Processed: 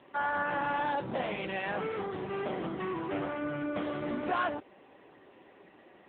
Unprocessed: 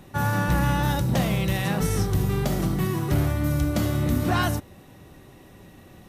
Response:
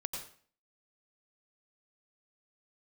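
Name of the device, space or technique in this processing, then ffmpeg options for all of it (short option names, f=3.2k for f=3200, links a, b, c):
telephone: -af "highpass=390,lowpass=3.1k,asoftclip=type=tanh:threshold=-20.5dB" -ar 8000 -c:a libopencore_amrnb -b:a 6700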